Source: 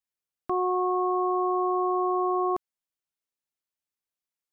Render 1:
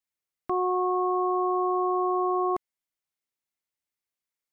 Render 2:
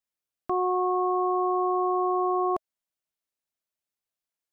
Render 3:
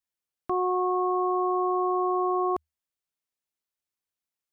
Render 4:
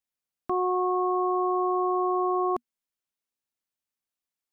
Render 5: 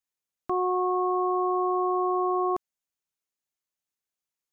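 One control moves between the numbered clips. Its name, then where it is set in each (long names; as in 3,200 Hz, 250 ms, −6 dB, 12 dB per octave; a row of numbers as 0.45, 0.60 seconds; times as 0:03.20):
parametric band, centre frequency: 2,100, 640, 77, 240, 6,600 Hertz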